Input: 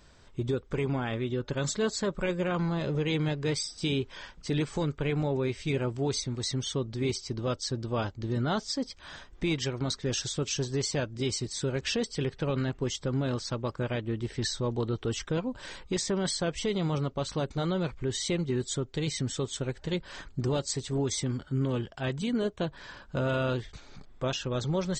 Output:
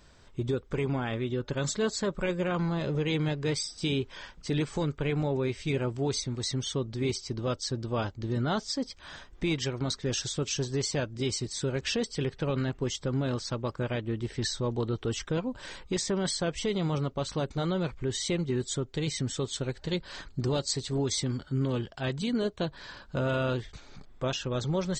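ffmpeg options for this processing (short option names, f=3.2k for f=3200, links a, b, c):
-filter_complex "[0:a]asettb=1/sr,asplit=3[a][b][c];[a]atrim=end=19.424[d];[b]atrim=start=19.42:end=23.15,asetpts=PTS-STARTPTS,afade=t=in:d=0.004:c=qsin,afade=t=out:st=3.726:d=0.004:c=qsin,equalizer=f=4.3k:w=3.6:g=6.5[e];[c]atrim=start=23.146[f];[d][e]acrossfade=d=0.004:c1=hsin:c2=qsin[g];[g][f]acrossfade=d=0.004:c1=qsin:c2=hsin"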